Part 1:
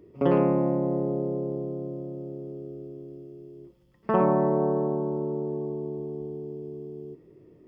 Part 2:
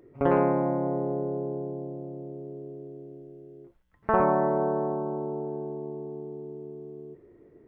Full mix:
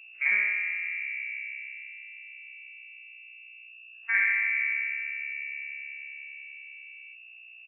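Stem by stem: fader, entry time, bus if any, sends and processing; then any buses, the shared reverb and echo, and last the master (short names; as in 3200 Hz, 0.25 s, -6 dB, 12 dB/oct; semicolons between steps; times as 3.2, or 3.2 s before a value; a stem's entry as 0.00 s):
-4.0 dB, 0.00 s, no send, HPF 310 Hz 24 dB/oct; hum 60 Hz, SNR 11 dB; spectral expander 1.5:1
-7.0 dB, 0.9 ms, no send, median-filter separation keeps harmonic; Chebyshev high-pass 470 Hz, order 8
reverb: off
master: inverted band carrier 2700 Hz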